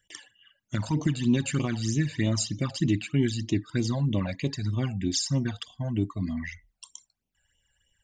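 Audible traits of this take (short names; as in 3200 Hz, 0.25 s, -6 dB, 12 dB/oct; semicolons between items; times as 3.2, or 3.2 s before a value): phasing stages 12, 3.2 Hz, lowest notch 320–1600 Hz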